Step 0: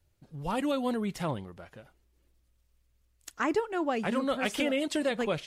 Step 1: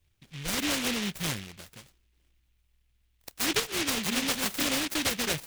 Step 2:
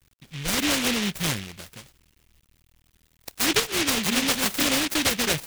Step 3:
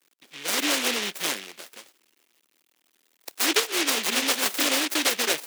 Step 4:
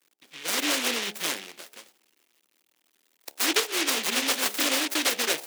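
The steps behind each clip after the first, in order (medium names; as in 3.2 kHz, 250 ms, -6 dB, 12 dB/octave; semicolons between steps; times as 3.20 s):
delay time shaken by noise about 2.6 kHz, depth 0.45 ms
bit crusher 11-bit; trim +5.5 dB
high-pass 300 Hz 24 dB/octave
de-hum 70.28 Hz, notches 13; trim -1.5 dB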